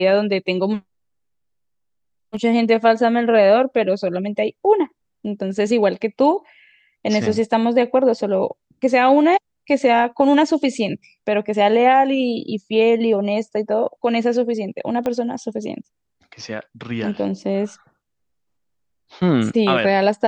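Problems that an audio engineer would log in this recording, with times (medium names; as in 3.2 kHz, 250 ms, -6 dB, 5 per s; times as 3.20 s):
15.06 s: pop -12 dBFS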